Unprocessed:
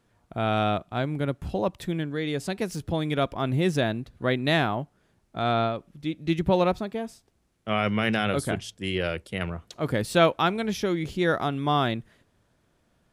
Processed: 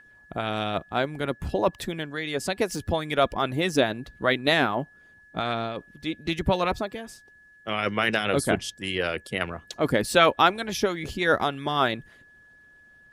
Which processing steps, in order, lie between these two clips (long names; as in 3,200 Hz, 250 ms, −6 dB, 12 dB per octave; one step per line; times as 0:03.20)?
steady tone 1,700 Hz −45 dBFS
harmonic and percussive parts rebalanced harmonic −13 dB
level +6 dB